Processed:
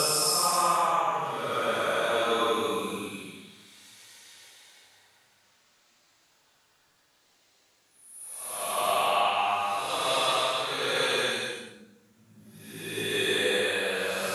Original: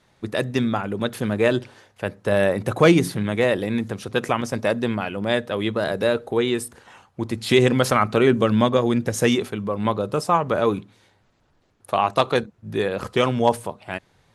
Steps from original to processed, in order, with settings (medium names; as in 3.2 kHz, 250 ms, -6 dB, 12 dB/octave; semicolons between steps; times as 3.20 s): tilt EQ +4.5 dB/octave; compression, threshold -21 dBFS, peak gain reduction 10.5 dB; Paulstretch 5.1×, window 0.25 s, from 10.18 s